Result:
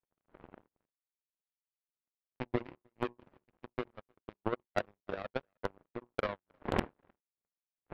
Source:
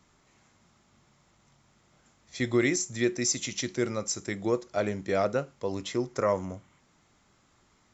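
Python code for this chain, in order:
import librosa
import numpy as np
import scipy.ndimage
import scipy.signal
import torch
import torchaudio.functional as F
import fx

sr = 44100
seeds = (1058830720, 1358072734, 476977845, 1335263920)

p1 = scipy.ndimage.median_filter(x, 25, mode='constant')
p2 = fx.dmg_wind(p1, sr, seeds[0], corner_hz=430.0, level_db=-36.0)
p3 = fx.low_shelf(p2, sr, hz=140.0, db=-5.5)
p4 = fx.transient(p3, sr, attack_db=8, sustain_db=-3)
p5 = fx.echo_feedback(p4, sr, ms=309, feedback_pct=17, wet_db=-13.0)
p6 = np.where(np.abs(p5) >= 10.0 ** (-32.0 / 20.0), p5, 0.0)
p7 = p5 + F.gain(torch.from_numpy(p6), -10.0).numpy()
p8 = scipy.signal.sosfilt(scipy.signal.butter(4, 2700.0, 'lowpass', fs=sr, output='sos'), p7)
p9 = fx.hum_notches(p8, sr, base_hz=60, count=7)
p10 = 10.0 ** (-9.5 / 20.0) * (np.abs((p9 / 10.0 ** (-9.5 / 20.0) + 3.0) % 4.0 - 2.0) - 1.0)
p11 = fx.power_curve(p10, sr, exponent=3.0)
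y = F.gain(torch.from_numpy(p11), -5.0).numpy()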